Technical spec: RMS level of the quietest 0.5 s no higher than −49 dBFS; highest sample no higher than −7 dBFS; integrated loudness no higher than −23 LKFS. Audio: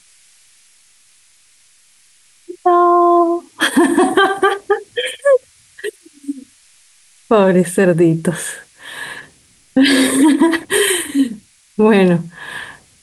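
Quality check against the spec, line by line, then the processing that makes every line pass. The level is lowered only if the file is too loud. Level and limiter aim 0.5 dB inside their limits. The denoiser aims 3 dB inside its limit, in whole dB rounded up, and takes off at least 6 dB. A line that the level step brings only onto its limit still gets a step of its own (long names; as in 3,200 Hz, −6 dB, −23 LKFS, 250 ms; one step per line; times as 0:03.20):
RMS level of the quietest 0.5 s −51 dBFS: in spec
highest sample −3.5 dBFS: out of spec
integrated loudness −14.0 LKFS: out of spec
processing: level −9.5 dB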